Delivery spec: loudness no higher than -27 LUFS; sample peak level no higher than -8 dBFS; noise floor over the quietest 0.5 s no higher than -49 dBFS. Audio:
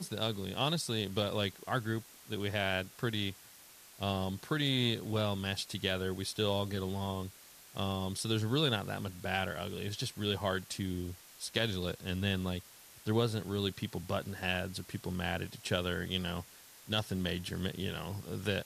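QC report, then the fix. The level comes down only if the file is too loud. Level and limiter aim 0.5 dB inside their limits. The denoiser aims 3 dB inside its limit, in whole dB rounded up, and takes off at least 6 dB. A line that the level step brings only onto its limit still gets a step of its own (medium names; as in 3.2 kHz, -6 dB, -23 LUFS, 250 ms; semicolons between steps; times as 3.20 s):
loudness -35.0 LUFS: pass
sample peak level -17.0 dBFS: pass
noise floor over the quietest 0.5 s -56 dBFS: pass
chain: none needed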